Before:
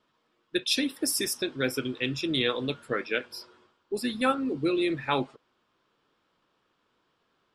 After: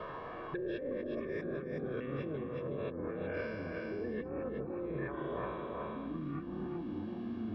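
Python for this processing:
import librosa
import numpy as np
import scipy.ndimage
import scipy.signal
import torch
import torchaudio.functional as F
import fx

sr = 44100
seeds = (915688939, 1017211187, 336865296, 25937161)

y = fx.spec_trails(x, sr, decay_s=1.08)
y = scipy.signal.sosfilt(scipy.signal.butter(2, 1500.0, 'lowpass', fs=sr, output='sos'), y)
y = fx.env_lowpass_down(y, sr, base_hz=560.0, full_db=-23.0)
y = fx.low_shelf(y, sr, hz=180.0, db=-6.0)
y = y + 0.85 * np.pad(y, (int(1.8 * sr / 1000.0), 0))[:len(y)]
y = fx.over_compress(y, sr, threshold_db=-37.0, ratio=-1.0)
y = fx.echo_pitch(y, sr, ms=87, semitones=-7, count=2, db_per_echo=-6.0)
y = y + 10.0 ** (-9.0 / 20.0) * np.pad(y, (int(371 * sr / 1000.0), 0))[:len(y)]
y = fx.band_squash(y, sr, depth_pct=100)
y = y * 10.0 ** (-4.5 / 20.0)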